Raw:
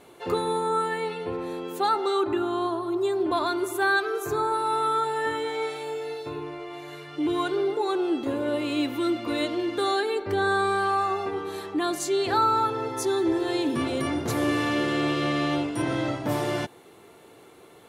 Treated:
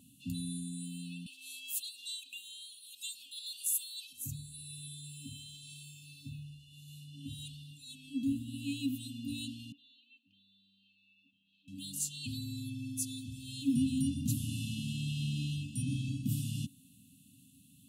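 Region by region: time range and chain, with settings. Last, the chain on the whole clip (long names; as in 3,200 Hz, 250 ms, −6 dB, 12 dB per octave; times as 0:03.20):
0:01.26–0:04.13: high-pass filter 870 Hz 24 dB per octave + envelope flattener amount 50%
0:09.72–0:11.68: flat-topped band-pass 1,300 Hz, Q 0.89 + high-frequency loss of the air 200 metres
whole clip: brick-wall band-stop 290–2,500 Hz; high-pass filter 76 Hz; flat-topped bell 2,800 Hz −9 dB 2.5 octaves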